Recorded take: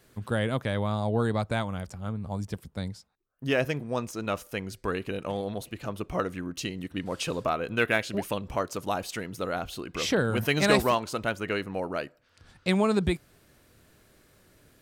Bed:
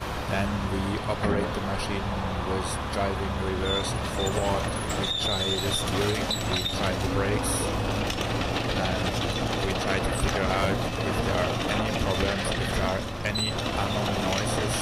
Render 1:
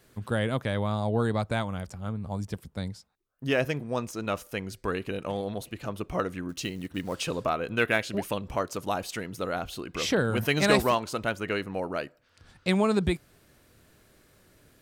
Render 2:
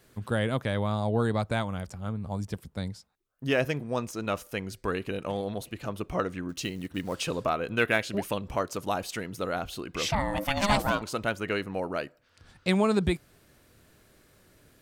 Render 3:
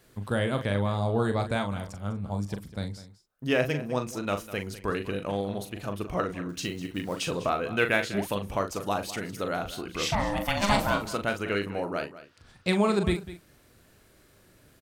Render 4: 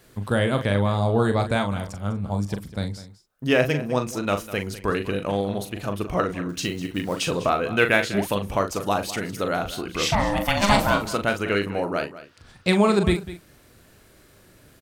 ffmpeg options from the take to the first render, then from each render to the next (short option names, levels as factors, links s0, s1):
-filter_complex "[0:a]asettb=1/sr,asplit=3[s0][s1][s2];[s0]atrim=end=6.494[s3];[s1]atrim=start=6.49:end=7.26,asetpts=PTS-STARTPTS,afade=t=in:d=0.004:c=qsin,afade=t=out:st=0.766:d=0.004:c=qsin,acrusher=bits=6:mode=log:mix=0:aa=0.000001[s4];[s2]atrim=start=7.256[s5];[s3][s4]acrossfade=d=0.004:c1=hsin:c2=qsin[s6];[s6][s5]acrossfade=d=0.004:c1=qsin:c2=hsin"
-filter_complex "[0:a]asettb=1/sr,asplit=3[s0][s1][s2];[s0]atrim=end=6.144[s3];[s1]atrim=start=6.14:end=6.55,asetpts=PTS-STARTPTS,afade=t=in:d=0.004:c=qsin,afade=t=out:st=0.406:d=0.004:c=qsin,equalizer=f=12000:t=o:w=0.41:g=-11.5[s4];[s2]atrim=start=6.546[s5];[s3][s4]acrossfade=d=0.004:c1=hsin:c2=qsin[s6];[s6][s5]acrossfade=d=0.004:c1=qsin:c2=hsin,asettb=1/sr,asplit=3[s7][s8][s9];[s7]atrim=end=10.084[s10];[s8]atrim=start=10.08:end=11.02,asetpts=PTS-STARTPTS,afade=t=in:d=0.004:c=qsin,afade=t=out:st=0.936:d=0.004:c=qsin,aeval=exprs='val(0)*sin(2*PI*410*n/s)':c=same[s11];[s9]atrim=start=11.016[s12];[s10][s11]acrossfade=d=0.004:c1=hsin:c2=qsin[s13];[s13][s12]acrossfade=d=0.004:c1=qsin:c2=hsin"
-filter_complex "[0:a]asplit=2[s0][s1];[s1]adelay=40,volume=0.422[s2];[s0][s2]amix=inputs=2:normalize=0,aecho=1:1:201:0.168"
-af "volume=1.88"